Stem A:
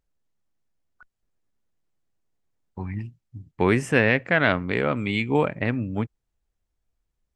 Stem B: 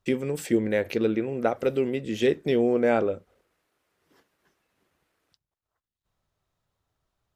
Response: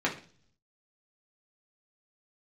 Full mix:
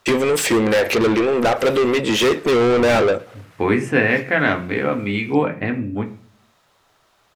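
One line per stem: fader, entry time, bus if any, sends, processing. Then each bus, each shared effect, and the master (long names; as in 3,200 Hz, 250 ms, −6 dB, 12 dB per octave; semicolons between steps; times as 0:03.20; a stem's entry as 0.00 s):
−4.5 dB, 0.00 s, send −6 dB, no echo send, mains-hum notches 60/120 Hz
0.0 dB, 0.00 s, no send, echo send −22.5 dB, mid-hump overdrive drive 31 dB, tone 5,600 Hz, clips at −8.5 dBFS; every ending faded ahead of time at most 430 dB per second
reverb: on, RT60 0.45 s, pre-delay 3 ms
echo: single-tap delay 113 ms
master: no processing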